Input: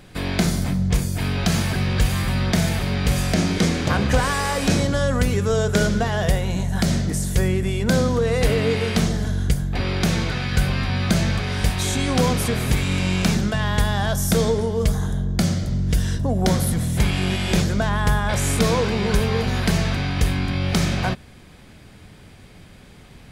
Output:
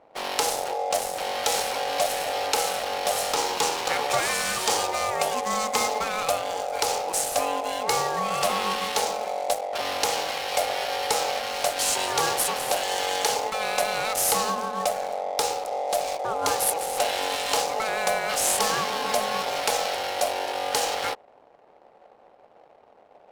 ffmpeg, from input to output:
-af "aeval=exprs='val(0)*sin(2*PI*650*n/s)':c=same,aemphasis=mode=production:type=riaa,adynamicsmooth=sensitivity=7.5:basefreq=520,volume=-2.5dB"

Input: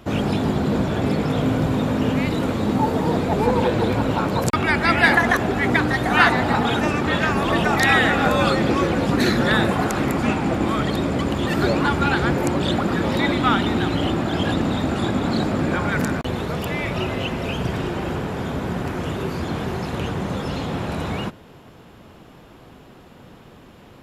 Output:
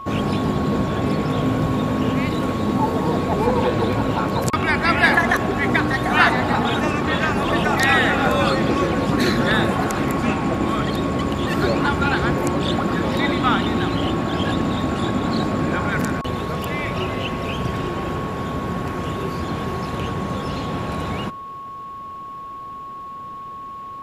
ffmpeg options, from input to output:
-af "aeval=exprs='val(0)+0.0282*sin(2*PI*1100*n/s)':c=same"

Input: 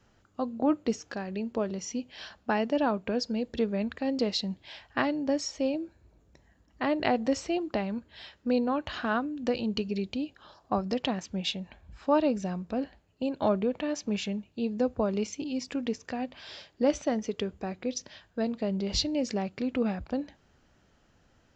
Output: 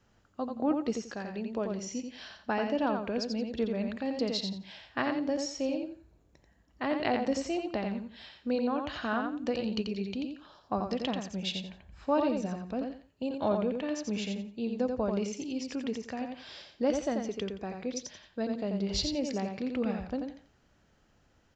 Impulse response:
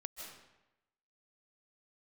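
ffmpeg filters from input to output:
-af "aecho=1:1:87|174|261:0.562|0.124|0.0272,volume=-3.5dB"

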